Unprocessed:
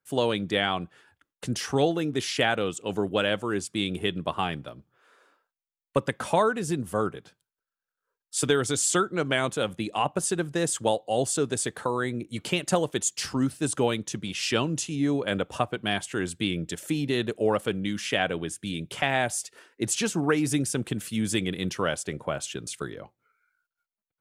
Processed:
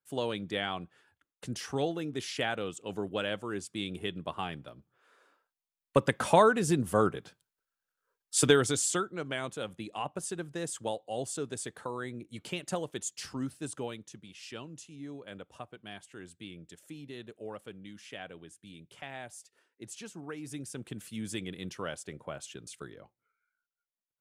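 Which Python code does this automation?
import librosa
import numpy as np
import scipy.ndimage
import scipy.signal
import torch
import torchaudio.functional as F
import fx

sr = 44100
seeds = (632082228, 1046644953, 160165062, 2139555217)

y = fx.gain(x, sr, db=fx.line((4.55, -8.0), (6.17, 1.0), (8.51, 1.0), (9.14, -10.0), (13.53, -10.0), (14.31, -18.0), (20.31, -18.0), (20.99, -10.5)))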